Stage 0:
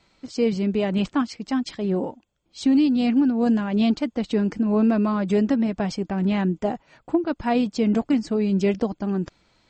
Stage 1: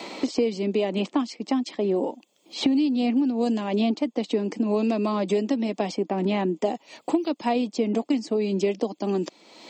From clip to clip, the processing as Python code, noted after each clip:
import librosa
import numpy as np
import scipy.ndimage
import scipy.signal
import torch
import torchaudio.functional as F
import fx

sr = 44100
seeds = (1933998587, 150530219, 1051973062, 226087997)

y = scipy.signal.sosfilt(scipy.signal.butter(4, 250.0, 'highpass', fs=sr, output='sos'), x)
y = fx.peak_eq(y, sr, hz=1500.0, db=-14.0, octaves=0.52)
y = fx.band_squash(y, sr, depth_pct=100)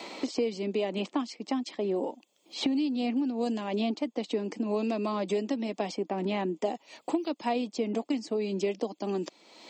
y = fx.low_shelf(x, sr, hz=270.0, db=-5.0)
y = F.gain(torch.from_numpy(y), -4.0).numpy()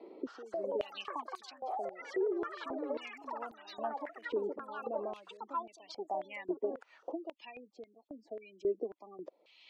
y = fx.spec_gate(x, sr, threshold_db=-20, keep='strong')
y = fx.echo_pitch(y, sr, ms=262, semitones=6, count=3, db_per_echo=-3.0)
y = fx.filter_held_bandpass(y, sr, hz=3.7, low_hz=390.0, high_hz=3900.0)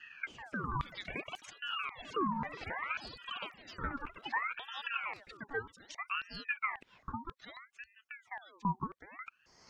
y = fx.ring_lfo(x, sr, carrier_hz=1400.0, swing_pct=60, hz=0.63)
y = F.gain(torch.from_numpy(y), 2.0).numpy()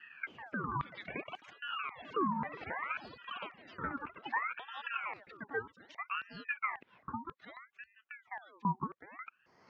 y = fx.bandpass_edges(x, sr, low_hz=120.0, high_hz=2300.0)
y = F.gain(torch.from_numpy(y), 1.0).numpy()